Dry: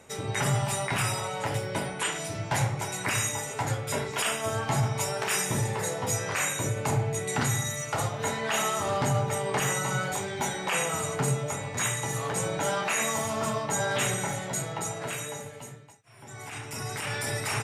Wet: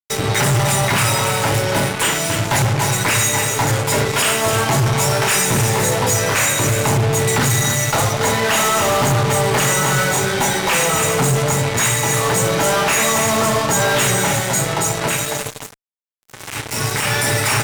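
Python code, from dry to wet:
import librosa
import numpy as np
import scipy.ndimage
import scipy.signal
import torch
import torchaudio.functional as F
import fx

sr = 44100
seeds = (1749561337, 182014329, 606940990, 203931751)

p1 = scipy.signal.sosfilt(scipy.signal.butter(2, 55.0, 'highpass', fs=sr, output='sos'), x)
p2 = fx.notch(p1, sr, hz=730.0, q=17.0)
p3 = p2 + fx.echo_single(p2, sr, ms=283, db=-9.5, dry=0)
y = fx.fuzz(p3, sr, gain_db=35.0, gate_db=-37.0)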